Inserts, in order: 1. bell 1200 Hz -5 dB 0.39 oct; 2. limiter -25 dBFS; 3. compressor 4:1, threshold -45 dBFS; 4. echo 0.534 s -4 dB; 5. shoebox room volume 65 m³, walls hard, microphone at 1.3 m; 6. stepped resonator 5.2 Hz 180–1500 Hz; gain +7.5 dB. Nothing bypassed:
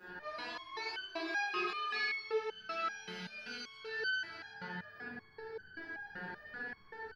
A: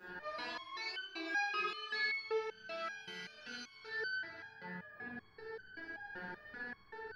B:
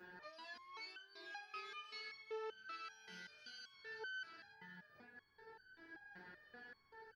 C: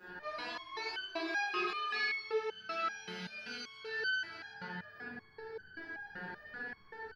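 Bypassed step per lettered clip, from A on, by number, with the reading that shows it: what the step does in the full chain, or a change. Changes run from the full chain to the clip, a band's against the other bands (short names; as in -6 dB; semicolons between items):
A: 4, 2 kHz band +2.0 dB; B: 5, 250 Hz band -4.0 dB; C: 2, mean gain reduction 2.5 dB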